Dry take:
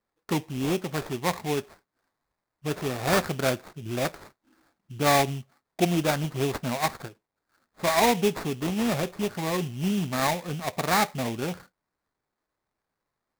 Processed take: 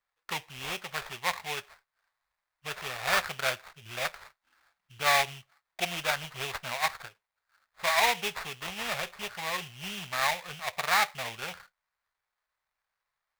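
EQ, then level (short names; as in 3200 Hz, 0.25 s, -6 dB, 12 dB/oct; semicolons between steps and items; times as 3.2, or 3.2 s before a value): tone controls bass -9 dB, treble -11 dB; passive tone stack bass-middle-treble 10-0-10; +7.5 dB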